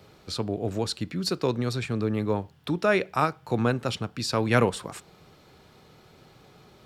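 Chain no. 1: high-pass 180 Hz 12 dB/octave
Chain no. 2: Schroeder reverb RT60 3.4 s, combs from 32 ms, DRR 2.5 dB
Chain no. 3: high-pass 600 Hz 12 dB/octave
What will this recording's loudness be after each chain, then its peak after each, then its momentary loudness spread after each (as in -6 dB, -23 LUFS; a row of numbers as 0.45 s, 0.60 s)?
-28.0 LUFS, -26.0 LUFS, -31.5 LUFS; -7.5 dBFS, -7.5 dBFS, -10.0 dBFS; 10 LU, 13 LU, 11 LU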